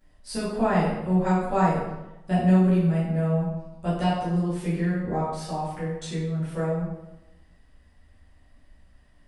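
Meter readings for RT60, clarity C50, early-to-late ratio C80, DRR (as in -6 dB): 0.95 s, 1.0 dB, 4.0 dB, -12.0 dB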